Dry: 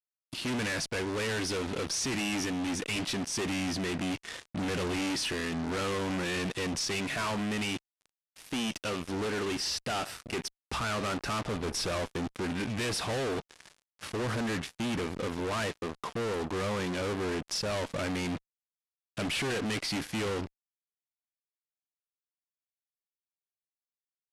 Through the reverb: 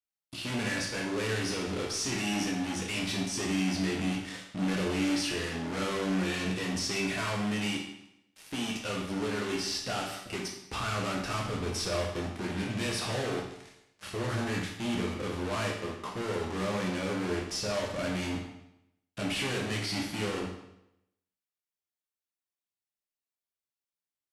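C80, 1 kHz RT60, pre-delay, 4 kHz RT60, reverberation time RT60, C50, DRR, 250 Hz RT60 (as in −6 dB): 7.0 dB, 0.80 s, 10 ms, 0.75 s, 0.80 s, 4.5 dB, −1.5 dB, 0.80 s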